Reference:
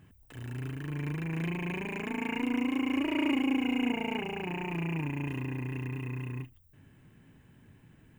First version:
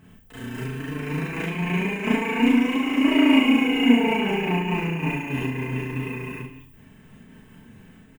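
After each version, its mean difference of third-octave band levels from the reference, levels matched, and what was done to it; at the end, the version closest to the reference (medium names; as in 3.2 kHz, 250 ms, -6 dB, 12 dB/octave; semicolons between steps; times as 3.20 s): 3.0 dB: comb 4.5 ms, depth 46%; Schroeder reverb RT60 0.57 s, combs from 30 ms, DRR -5.5 dB; random flutter of the level, depth 60%; trim +6 dB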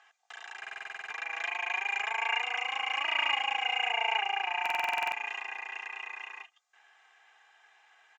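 13.5 dB: Chebyshev band-pass 670–6900 Hz, order 4; comb 2.5 ms, depth 98%; buffer glitch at 0.59/4.61 s, samples 2048, times 10; trim +6 dB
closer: first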